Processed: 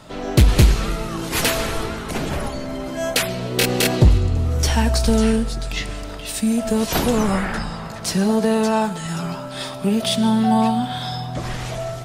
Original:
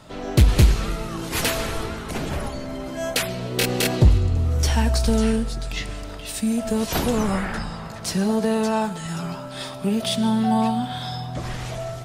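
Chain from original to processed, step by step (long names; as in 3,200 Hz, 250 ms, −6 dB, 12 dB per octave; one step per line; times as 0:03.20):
parametric band 78 Hz −3 dB 1.1 octaves
level +3.5 dB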